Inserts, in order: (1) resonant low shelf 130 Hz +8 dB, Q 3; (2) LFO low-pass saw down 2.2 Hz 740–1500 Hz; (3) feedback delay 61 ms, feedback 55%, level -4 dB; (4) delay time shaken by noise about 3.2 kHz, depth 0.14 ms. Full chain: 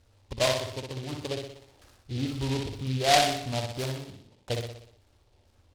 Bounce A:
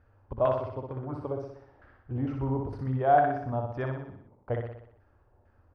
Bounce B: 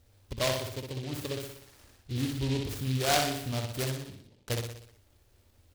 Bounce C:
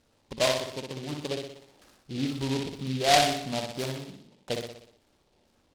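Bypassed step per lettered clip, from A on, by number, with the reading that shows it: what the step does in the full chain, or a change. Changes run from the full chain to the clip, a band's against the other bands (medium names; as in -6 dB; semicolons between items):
4, 2 kHz band -7.0 dB; 2, 1 kHz band -4.0 dB; 1, 125 Hz band -4.0 dB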